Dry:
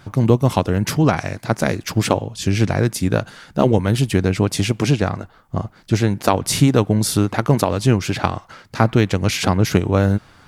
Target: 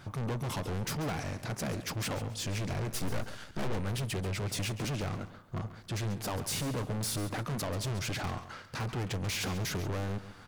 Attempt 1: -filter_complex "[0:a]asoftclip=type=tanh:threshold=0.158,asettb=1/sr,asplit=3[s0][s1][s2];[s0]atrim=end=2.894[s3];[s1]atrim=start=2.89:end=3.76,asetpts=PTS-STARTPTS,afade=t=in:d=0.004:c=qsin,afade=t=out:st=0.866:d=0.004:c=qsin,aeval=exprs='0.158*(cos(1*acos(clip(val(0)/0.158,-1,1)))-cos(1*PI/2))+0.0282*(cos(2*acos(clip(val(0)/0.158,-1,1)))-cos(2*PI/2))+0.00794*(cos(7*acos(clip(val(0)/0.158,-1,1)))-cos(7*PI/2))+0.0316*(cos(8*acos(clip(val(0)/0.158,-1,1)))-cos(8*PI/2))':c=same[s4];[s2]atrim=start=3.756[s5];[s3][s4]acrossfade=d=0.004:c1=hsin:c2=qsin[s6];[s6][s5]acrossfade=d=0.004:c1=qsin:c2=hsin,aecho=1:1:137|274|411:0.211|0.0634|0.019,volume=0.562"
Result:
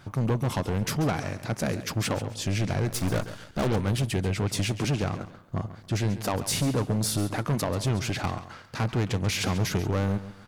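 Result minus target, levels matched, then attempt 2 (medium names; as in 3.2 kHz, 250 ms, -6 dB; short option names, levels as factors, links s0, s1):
saturation: distortion -6 dB
-filter_complex "[0:a]asoftclip=type=tanh:threshold=0.0447,asettb=1/sr,asplit=3[s0][s1][s2];[s0]atrim=end=2.894[s3];[s1]atrim=start=2.89:end=3.76,asetpts=PTS-STARTPTS,afade=t=in:d=0.004:c=qsin,afade=t=out:st=0.866:d=0.004:c=qsin,aeval=exprs='0.158*(cos(1*acos(clip(val(0)/0.158,-1,1)))-cos(1*PI/2))+0.0282*(cos(2*acos(clip(val(0)/0.158,-1,1)))-cos(2*PI/2))+0.00794*(cos(7*acos(clip(val(0)/0.158,-1,1)))-cos(7*PI/2))+0.0316*(cos(8*acos(clip(val(0)/0.158,-1,1)))-cos(8*PI/2))':c=same[s4];[s2]atrim=start=3.756[s5];[s3][s4]acrossfade=d=0.004:c1=hsin:c2=qsin[s6];[s6][s5]acrossfade=d=0.004:c1=qsin:c2=hsin,aecho=1:1:137|274|411:0.211|0.0634|0.019,volume=0.562"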